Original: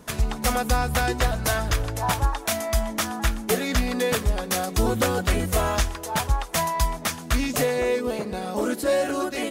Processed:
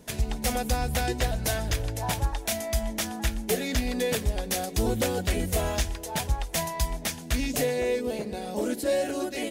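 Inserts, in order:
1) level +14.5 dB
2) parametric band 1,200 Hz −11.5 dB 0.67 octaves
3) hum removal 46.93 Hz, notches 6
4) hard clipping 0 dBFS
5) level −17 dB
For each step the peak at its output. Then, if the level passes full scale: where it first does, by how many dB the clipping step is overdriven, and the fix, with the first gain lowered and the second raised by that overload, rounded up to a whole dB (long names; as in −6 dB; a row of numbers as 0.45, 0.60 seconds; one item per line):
+4.5, +4.5, +4.0, 0.0, −17.0 dBFS
step 1, 4.0 dB
step 1 +10.5 dB, step 5 −13 dB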